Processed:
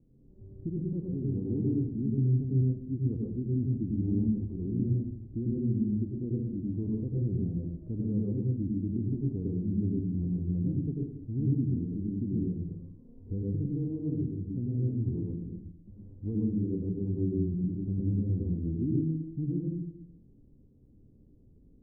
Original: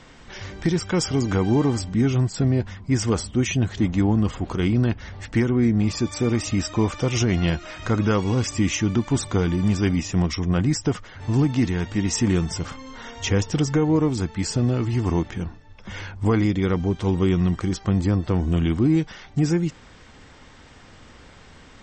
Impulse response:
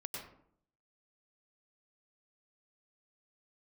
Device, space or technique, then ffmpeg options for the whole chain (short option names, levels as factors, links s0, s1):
next room: -filter_complex "[0:a]lowpass=f=350:w=0.5412,lowpass=f=350:w=1.3066[s0];[1:a]atrim=start_sample=2205[s1];[s0][s1]afir=irnorm=-1:irlink=0,volume=0.398"